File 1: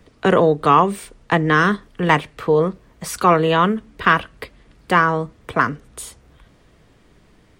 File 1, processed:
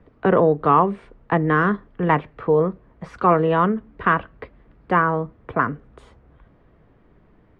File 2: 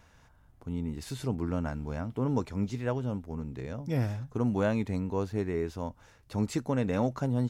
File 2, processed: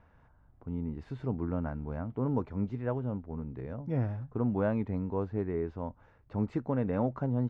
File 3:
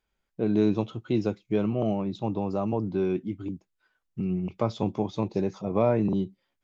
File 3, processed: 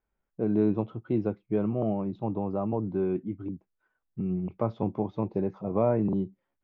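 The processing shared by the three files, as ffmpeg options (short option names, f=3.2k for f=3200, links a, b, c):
-af "lowpass=1.5k,volume=-1.5dB"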